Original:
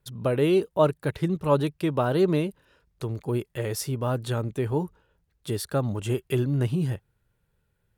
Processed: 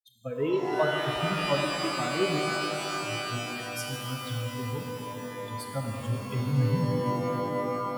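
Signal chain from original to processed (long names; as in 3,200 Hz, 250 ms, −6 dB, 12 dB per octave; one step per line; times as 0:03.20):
spectral dynamics exaggerated over time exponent 3
dynamic equaliser 110 Hz, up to +7 dB, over −48 dBFS, Q 1.9
reverb with rising layers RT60 3.9 s, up +12 semitones, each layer −2 dB, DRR 1 dB
level −3.5 dB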